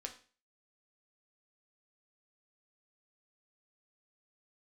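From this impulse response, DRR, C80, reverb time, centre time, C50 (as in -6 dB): 2.5 dB, 16.0 dB, 0.40 s, 11 ms, 11.5 dB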